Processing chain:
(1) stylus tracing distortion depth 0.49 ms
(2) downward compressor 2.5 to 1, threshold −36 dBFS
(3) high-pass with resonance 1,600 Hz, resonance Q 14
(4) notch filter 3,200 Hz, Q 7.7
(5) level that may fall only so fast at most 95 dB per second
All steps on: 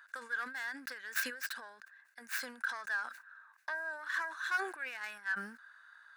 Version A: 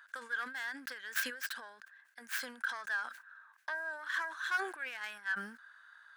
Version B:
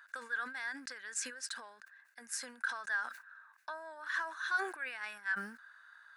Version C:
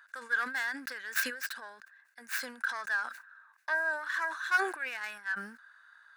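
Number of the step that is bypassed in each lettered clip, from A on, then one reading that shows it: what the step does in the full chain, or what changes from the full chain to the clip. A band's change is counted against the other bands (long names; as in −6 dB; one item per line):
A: 4, 4 kHz band +2.0 dB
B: 1, change in crest factor −1.5 dB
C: 2, average gain reduction 3.5 dB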